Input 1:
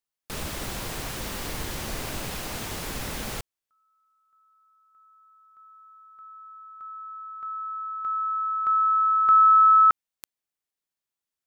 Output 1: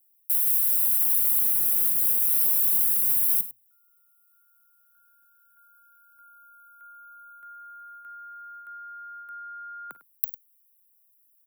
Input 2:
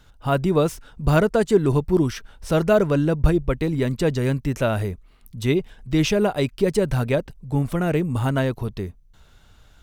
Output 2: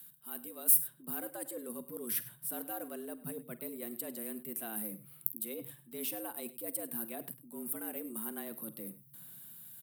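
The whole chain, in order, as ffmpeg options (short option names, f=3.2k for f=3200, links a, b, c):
-filter_complex "[0:a]equalizer=f=580:t=o:w=1.1:g=-3.5,afreqshift=110,areverse,acompressor=threshold=-35dB:ratio=4:attack=5.8:release=188:knee=6:detection=rms,areverse,highshelf=f=2.1k:g=12,aecho=1:1:41|52|101:0.1|0.112|0.141,acrossover=split=1600[a][b];[a]dynaudnorm=f=150:g=11:m=7dB[c];[b]aexciter=amount=12.6:drive=9.6:freq=9.4k[d];[c][d]amix=inputs=2:normalize=0,highpass=f=150:w=0.5412,highpass=f=150:w=1.3066,volume=-15.5dB"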